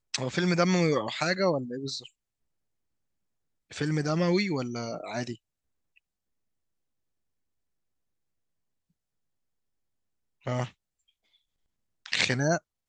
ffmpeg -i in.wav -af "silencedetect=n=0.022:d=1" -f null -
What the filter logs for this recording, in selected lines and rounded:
silence_start: 1.99
silence_end: 3.72 | silence_duration: 1.72
silence_start: 5.33
silence_end: 10.47 | silence_duration: 5.14
silence_start: 10.66
silence_end: 12.06 | silence_duration: 1.40